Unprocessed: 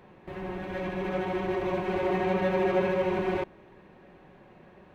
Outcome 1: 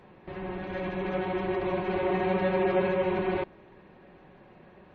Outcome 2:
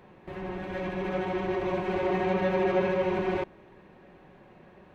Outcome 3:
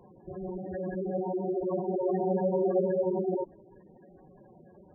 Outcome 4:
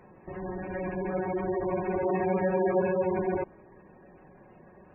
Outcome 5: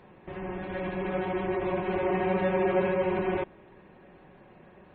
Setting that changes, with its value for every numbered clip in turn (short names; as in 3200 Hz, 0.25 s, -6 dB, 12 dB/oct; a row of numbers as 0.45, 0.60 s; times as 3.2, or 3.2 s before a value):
spectral gate, under each frame's peak: -45, -60, -10, -20, -35 dB